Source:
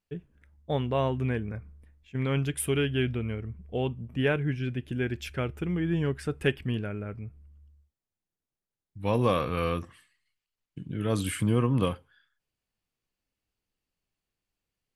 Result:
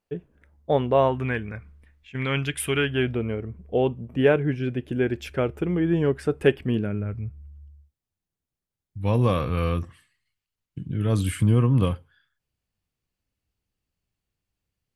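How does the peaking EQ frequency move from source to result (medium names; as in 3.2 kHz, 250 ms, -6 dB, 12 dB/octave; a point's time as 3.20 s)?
peaking EQ +9.5 dB 2.4 oct
0.96 s 580 Hz
1.43 s 2.3 kHz
2.62 s 2.3 kHz
3.21 s 510 Hz
6.64 s 510 Hz
7.13 s 78 Hz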